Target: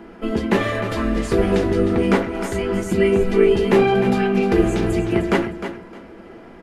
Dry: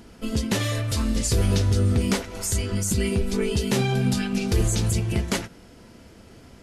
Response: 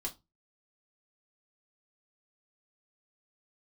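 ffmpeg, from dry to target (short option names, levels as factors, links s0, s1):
-filter_complex "[0:a]acrossover=split=210 2400:gain=0.224 1 0.0708[s0][s1][s2];[s0][s1][s2]amix=inputs=3:normalize=0,aecho=1:1:307|614|921:0.316|0.0696|0.0153,asplit=2[s3][s4];[1:a]atrim=start_sample=2205,highshelf=f=9800:g=7[s5];[s4][s5]afir=irnorm=-1:irlink=0,volume=1.06[s6];[s3][s6]amix=inputs=2:normalize=0,volume=1.68"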